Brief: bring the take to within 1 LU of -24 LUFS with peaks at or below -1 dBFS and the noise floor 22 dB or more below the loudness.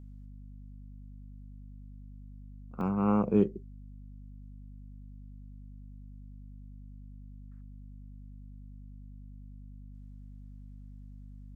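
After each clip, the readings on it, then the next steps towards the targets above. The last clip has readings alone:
dropouts 1; longest dropout 1.1 ms; hum 50 Hz; highest harmonic 250 Hz; hum level -45 dBFS; loudness -29.5 LUFS; peak level -12.5 dBFS; loudness target -24.0 LUFS
-> interpolate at 2.81 s, 1.1 ms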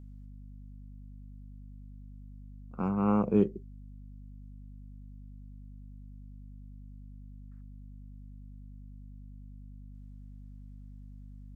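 dropouts 0; hum 50 Hz; highest harmonic 250 Hz; hum level -45 dBFS
-> de-hum 50 Hz, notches 5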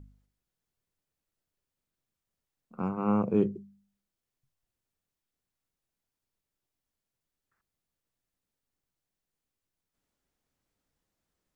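hum not found; loudness -29.0 LUFS; peak level -13.5 dBFS; loudness target -24.0 LUFS
-> trim +5 dB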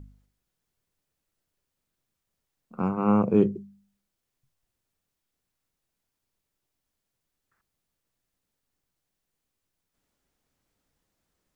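loudness -24.0 LUFS; peak level -8.5 dBFS; noise floor -83 dBFS

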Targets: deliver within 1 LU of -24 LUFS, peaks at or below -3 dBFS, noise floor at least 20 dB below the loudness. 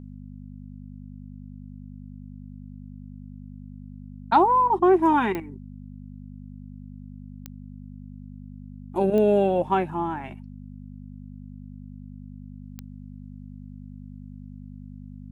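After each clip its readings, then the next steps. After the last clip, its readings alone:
clicks found 4; hum 50 Hz; highest harmonic 250 Hz; hum level -38 dBFS; loudness -22.0 LUFS; peak level -8.0 dBFS; loudness target -24.0 LUFS
-> de-click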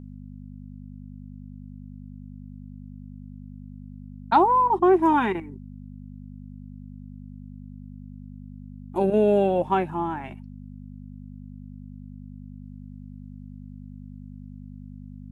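clicks found 0; hum 50 Hz; highest harmonic 250 Hz; hum level -38 dBFS
-> de-hum 50 Hz, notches 5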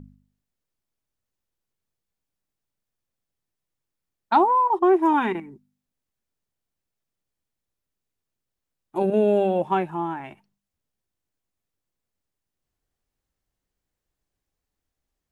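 hum not found; loudness -21.5 LUFS; peak level -7.5 dBFS; loudness target -24.0 LUFS
-> trim -2.5 dB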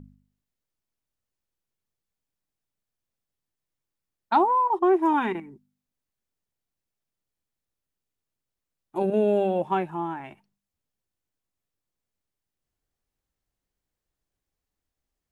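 loudness -24.0 LUFS; peak level -10.0 dBFS; noise floor -87 dBFS

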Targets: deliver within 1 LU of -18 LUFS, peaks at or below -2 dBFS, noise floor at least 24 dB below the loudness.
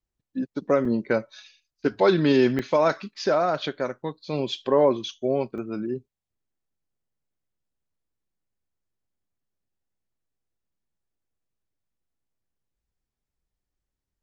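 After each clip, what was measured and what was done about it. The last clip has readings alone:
dropouts 3; longest dropout 3.3 ms; loudness -24.5 LUFS; peak level -7.5 dBFS; loudness target -18.0 LUFS
-> interpolate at 0.85/2.59/5.58 s, 3.3 ms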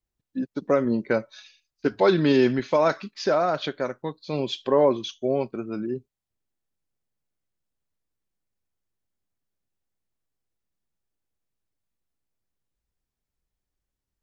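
dropouts 0; loudness -24.5 LUFS; peak level -7.5 dBFS; loudness target -18.0 LUFS
-> trim +6.5 dB; peak limiter -2 dBFS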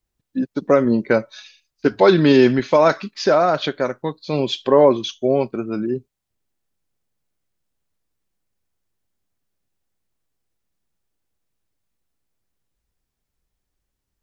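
loudness -18.0 LUFS; peak level -2.0 dBFS; noise floor -80 dBFS

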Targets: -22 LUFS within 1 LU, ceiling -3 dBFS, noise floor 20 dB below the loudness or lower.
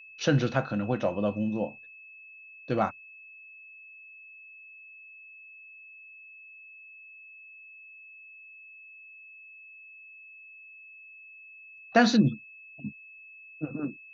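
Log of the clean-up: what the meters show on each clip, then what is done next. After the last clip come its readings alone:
steady tone 2.6 kHz; tone level -47 dBFS; loudness -28.0 LUFS; peak level -9.0 dBFS; loudness target -22.0 LUFS
-> band-stop 2.6 kHz, Q 30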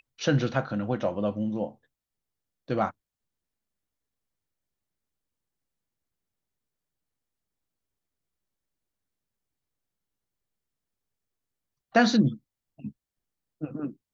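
steady tone not found; loudness -27.5 LUFS; peak level -9.0 dBFS; loudness target -22.0 LUFS
-> trim +5.5 dB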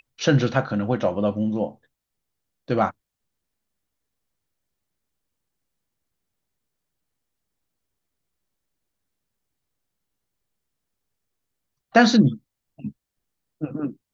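loudness -22.0 LUFS; peak level -3.5 dBFS; noise floor -83 dBFS

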